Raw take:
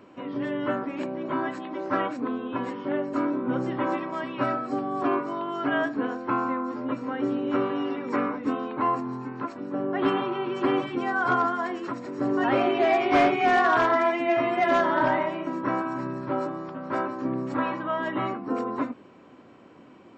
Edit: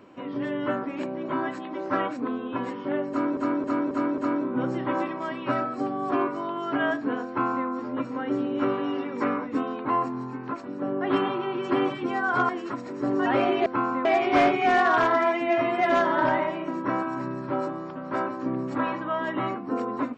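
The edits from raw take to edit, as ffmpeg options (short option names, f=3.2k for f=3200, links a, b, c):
-filter_complex "[0:a]asplit=8[a][b][c][d][e][f][g][h];[a]atrim=end=3.372[i];[b]atrim=start=3.098:end=3.372[j];[c]atrim=start=3.098:end=3.372[k];[d]atrim=start=3.098:end=3.372[l];[e]atrim=start=3.098:end=11.412[m];[f]atrim=start=11.668:end=12.842[n];[g]atrim=start=6.198:end=6.592[o];[h]atrim=start=12.838[p];[i][j]acrossfade=d=0.004:c1=hsin:c2=hsin[q];[q][k]acrossfade=d=0.004:c1=hsin:c2=hsin[r];[r][l]acrossfade=d=0.004:c1=hsin:c2=hsin[s];[s][m]acrossfade=d=0.004:c1=hsin:c2=hsin[t];[t][n]acrossfade=d=0.004:c1=hsin:c2=hsin[u];[u][o]acrossfade=d=0.004:c1=hsin:c2=hsin[v];[v][p]acrossfade=d=0.004:c1=hsin:c2=hsin"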